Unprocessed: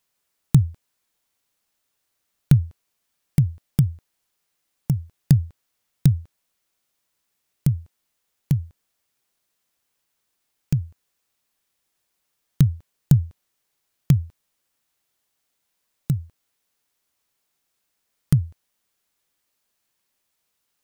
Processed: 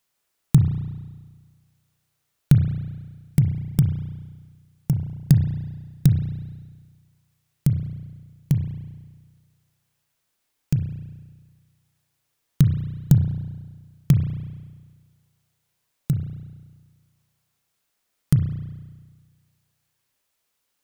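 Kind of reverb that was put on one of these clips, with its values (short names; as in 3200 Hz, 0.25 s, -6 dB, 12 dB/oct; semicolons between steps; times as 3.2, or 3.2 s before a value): spring tank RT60 1.5 s, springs 33 ms, chirp 30 ms, DRR 5.5 dB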